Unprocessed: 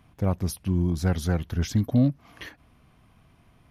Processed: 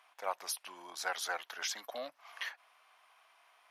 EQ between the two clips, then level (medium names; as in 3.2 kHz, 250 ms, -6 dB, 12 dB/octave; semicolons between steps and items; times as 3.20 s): high-pass 750 Hz 24 dB/octave; treble shelf 11 kHz -7.5 dB; +1.5 dB